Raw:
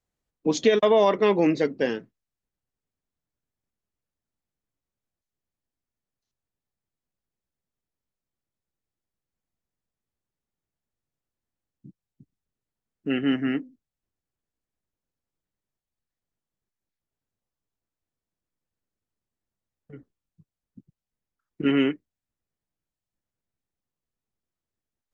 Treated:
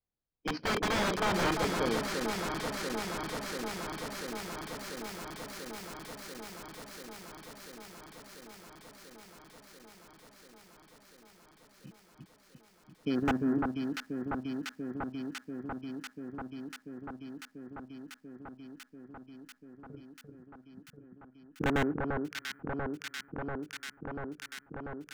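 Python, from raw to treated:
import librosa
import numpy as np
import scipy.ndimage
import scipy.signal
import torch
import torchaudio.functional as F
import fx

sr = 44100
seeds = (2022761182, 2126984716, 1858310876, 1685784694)

y = fx.bit_reversed(x, sr, seeds[0], block=16)
y = fx.dynamic_eq(y, sr, hz=170.0, q=3.1, threshold_db=-42.0, ratio=4.0, max_db=4)
y = fx.level_steps(y, sr, step_db=10)
y = fx.ellip_lowpass(y, sr, hz=fx.steps((0.0, 5000.0), (13.14, 1700.0)), order=4, stop_db=40)
y = (np.mod(10.0 ** (22.0 / 20.0) * y + 1.0, 2.0) - 1.0) / 10.0 ** (22.0 / 20.0)
y = fx.rider(y, sr, range_db=10, speed_s=2.0)
y = fx.echo_alternate(y, sr, ms=345, hz=1500.0, feedback_pct=89, wet_db=-4)
y = fx.slew_limit(y, sr, full_power_hz=100.0)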